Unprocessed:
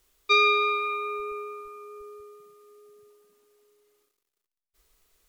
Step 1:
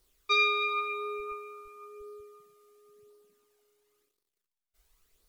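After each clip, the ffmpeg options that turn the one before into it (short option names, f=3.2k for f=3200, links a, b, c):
-af "flanger=delay=0.2:depth=1.2:regen=37:speed=0.95:shape=sinusoidal"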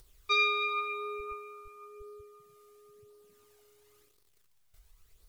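-af "lowshelf=f=160:t=q:w=1.5:g=8.5,acompressor=mode=upward:threshold=-51dB:ratio=2.5,volume=-1.5dB"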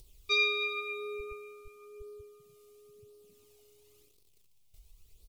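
-af "firequalizer=gain_entry='entry(230,0);entry(1600,-18);entry(2500,-2)':delay=0.05:min_phase=1,volume=3.5dB"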